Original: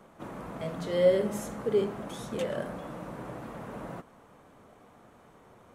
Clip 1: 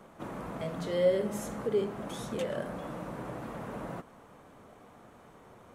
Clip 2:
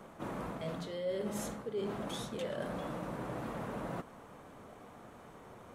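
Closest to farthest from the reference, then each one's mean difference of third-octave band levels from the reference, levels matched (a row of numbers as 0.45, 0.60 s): 1, 2; 2.5, 7.0 dB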